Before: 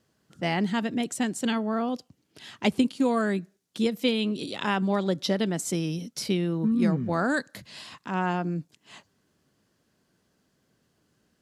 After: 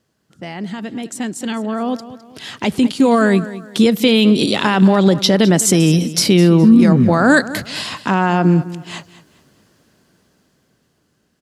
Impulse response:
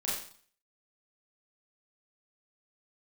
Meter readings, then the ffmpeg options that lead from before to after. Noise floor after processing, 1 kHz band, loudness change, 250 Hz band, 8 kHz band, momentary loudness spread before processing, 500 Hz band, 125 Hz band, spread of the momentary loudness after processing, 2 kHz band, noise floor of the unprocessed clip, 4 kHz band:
-64 dBFS, +11.0 dB, +13.5 dB, +13.5 dB, +15.5 dB, 8 LU, +12.5 dB, +15.0 dB, 17 LU, +12.0 dB, -72 dBFS, +13.5 dB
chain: -af "alimiter=limit=-21dB:level=0:latency=1:release=56,aecho=1:1:209|418|627:0.158|0.0507|0.0162,dynaudnorm=f=290:g=17:m=16dB,volume=2.5dB"

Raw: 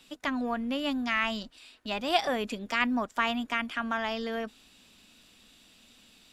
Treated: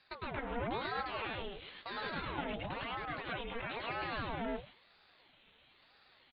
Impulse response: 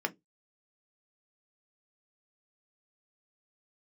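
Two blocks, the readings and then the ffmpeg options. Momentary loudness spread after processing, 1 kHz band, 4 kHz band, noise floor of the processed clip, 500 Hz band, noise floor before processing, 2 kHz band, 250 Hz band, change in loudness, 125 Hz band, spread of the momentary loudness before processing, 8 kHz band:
6 LU, -7.5 dB, -10.5 dB, -67 dBFS, -7.5 dB, -60 dBFS, -9.5 dB, -13.0 dB, -9.5 dB, n/a, 9 LU, under -30 dB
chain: -filter_complex "[0:a]agate=range=-9dB:threshold=-52dB:ratio=16:detection=peak,equalizer=f=83:t=o:w=1.9:g=-14.5,bandreject=f=60:t=h:w=6,bandreject=f=120:t=h:w=6,bandreject=f=180:t=h:w=6,bandreject=f=240:t=h:w=6,bandreject=f=300:t=h:w=6,acompressor=threshold=-38dB:ratio=6,aeval=exprs='(tanh(224*val(0)+0.8)-tanh(0.8))/224':c=same,asplit=2[a][b];[1:a]atrim=start_sample=2205,adelay=105[c];[b][c]afir=irnorm=-1:irlink=0,volume=-3dB[d];[a][d]amix=inputs=2:normalize=0,aresample=8000,aresample=44100,aeval=exprs='val(0)*sin(2*PI*630*n/s+630*0.7/1*sin(2*PI*1*n/s))':c=same,volume=9.5dB"

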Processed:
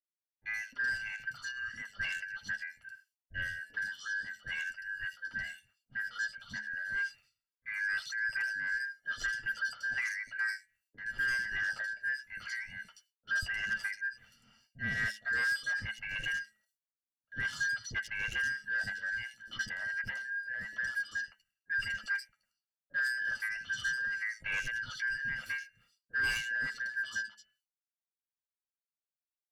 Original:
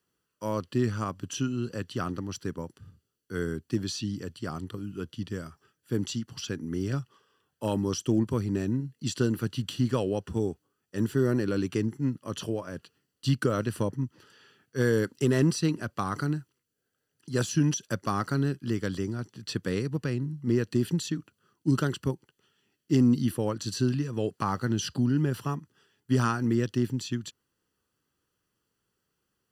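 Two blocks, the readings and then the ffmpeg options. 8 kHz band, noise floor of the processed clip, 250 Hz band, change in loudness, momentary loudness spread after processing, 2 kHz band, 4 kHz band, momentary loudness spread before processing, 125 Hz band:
-9.5 dB, under -85 dBFS, -30.0 dB, -5.5 dB, 8 LU, +11.0 dB, -4.0 dB, 11 LU, -25.0 dB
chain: -filter_complex "[0:a]afftfilt=real='real(if(lt(b,272),68*(eq(floor(b/68),0)*1+eq(floor(b/68),1)*0+eq(floor(b/68),2)*3+eq(floor(b/68),3)*2)+mod(b,68),b),0)':imag='imag(if(lt(b,272),68*(eq(floor(b/68),0)*1+eq(floor(b/68),1)*0+eq(floor(b/68),2)*3+eq(floor(b/68),3)*2)+mod(b,68),b),0)':win_size=2048:overlap=0.75,bandreject=f=213.4:t=h:w=4,bandreject=f=426.8:t=h:w=4,bandreject=f=640.2:t=h:w=4,bandreject=f=853.6:t=h:w=4,bandreject=f=1.067k:t=h:w=4,bandreject=f=1.2804k:t=h:w=4,bandreject=f=1.4938k:t=h:w=4,bandreject=f=1.7072k:t=h:w=4,bandreject=f=1.9206k:t=h:w=4,bandreject=f=2.134k:t=h:w=4,bandreject=f=2.3474k:t=h:w=4,bandreject=f=2.5608k:t=h:w=4,bandreject=f=2.7742k:t=h:w=4,bandreject=f=2.9876k:t=h:w=4,agate=range=-33dB:threshold=-55dB:ratio=3:detection=peak,equalizer=f=90:w=6.4:g=-3,aecho=1:1:1.4:0.96,acrossover=split=180|5000[a][b][c];[c]acompressor=threshold=-56dB:ratio=5[d];[a][b][d]amix=inputs=3:normalize=0,tremolo=f=2.4:d=0.63,flanger=delay=7.8:depth=2:regen=-28:speed=0.12:shape=sinusoidal,asoftclip=type=tanh:threshold=-29dB,acrossover=split=490|3500[e][f][g];[f]adelay=40[h];[g]adelay=120[i];[e][h][i]amix=inputs=3:normalize=0,volume=1.5dB"

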